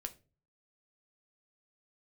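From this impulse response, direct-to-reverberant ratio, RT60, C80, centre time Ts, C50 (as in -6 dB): 6.5 dB, 0.35 s, 24.0 dB, 5 ms, 18.0 dB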